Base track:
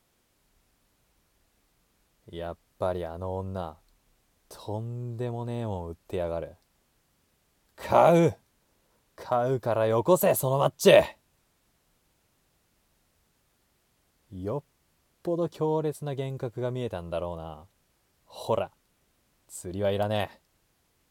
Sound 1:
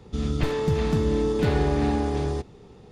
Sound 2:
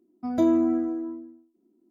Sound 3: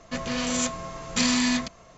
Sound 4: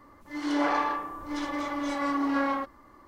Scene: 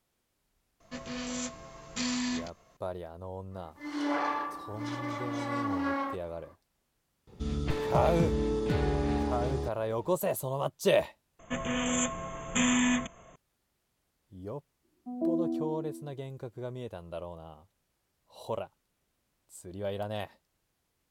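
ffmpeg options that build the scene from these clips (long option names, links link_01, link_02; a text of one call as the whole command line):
ffmpeg -i bed.wav -i cue0.wav -i cue1.wav -i cue2.wav -i cue3.wav -filter_complex "[3:a]asplit=2[link_01][link_02];[0:a]volume=-8dB[link_03];[link_01]asplit=2[link_04][link_05];[link_05]adelay=20,volume=-8dB[link_06];[link_04][link_06]amix=inputs=2:normalize=0[link_07];[4:a]highpass=84[link_08];[link_02]asuperstop=centerf=4700:order=20:qfactor=1.8[link_09];[2:a]asuperpass=centerf=350:order=8:qfactor=0.53[link_10];[link_03]asplit=2[link_11][link_12];[link_11]atrim=end=11.394[link_13];[link_09]atrim=end=1.97,asetpts=PTS-STARTPTS,volume=-2.5dB[link_14];[link_12]atrim=start=13.356[link_15];[link_07]atrim=end=1.97,asetpts=PTS-STARTPTS,volume=-11dB,afade=type=in:duration=0.004:curve=hsin,afade=type=out:start_time=1.966:duration=0.004:curve=hsin,adelay=800[link_16];[link_08]atrim=end=3.07,asetpts=PTS-STARTPTS,volume=-4.5dB,afade=type=in:duration=0.05,afade=type=out:start_time=3.02:duration=0.05,adelay=3500[link_17];[1:a]atrim=end=2.91,asetpts=PTS-STARTPTS,volume=-6.5dB,afade=type=in:duration=0.004:curve=hsin,afade=type=out:start_time=2.906:duration=0.004:curve=hsin,adelay=7270[link_18];[link_10]atrim=end=1.9,asetpts=PTS-STARTPTS,volume=-9dB,afade=type=in:duration=0.004:curve=hsin,afade=type=out:start_time=1.896:duration=0.004:curve=hsin,adelay=14830[link_19];[link_13][link_14]acrossfade=duration=0.004:curve1=hsin:curve2=hsin[link_20];[link_20][link_15]acrossfade=duration=0.004:curve1=hsin:curve2=hsin[link_21];[link_21][link_16][link_17][link_18][link_19]amix=inputs=5:normalize=0" out.wav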